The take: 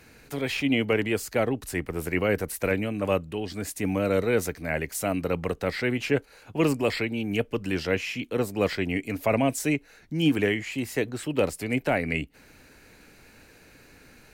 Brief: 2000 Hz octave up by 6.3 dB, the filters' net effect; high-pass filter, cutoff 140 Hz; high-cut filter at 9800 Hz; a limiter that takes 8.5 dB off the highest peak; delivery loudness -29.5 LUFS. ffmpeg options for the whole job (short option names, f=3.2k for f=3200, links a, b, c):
-af "highpass=140,lowpass=9.8k,equalizer=f=2k:t=o:g=7.5,volume=-1.5dB,alimiter=limit=-17.5dB:level=0:latency=1"